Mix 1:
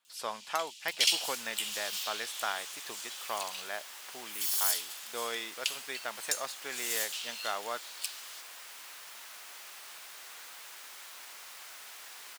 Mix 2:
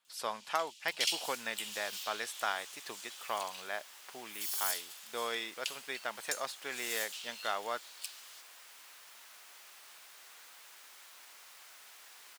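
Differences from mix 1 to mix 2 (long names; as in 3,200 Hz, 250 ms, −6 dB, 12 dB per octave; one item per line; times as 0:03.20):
first sound −6.0 dB
second sound −7.0 dB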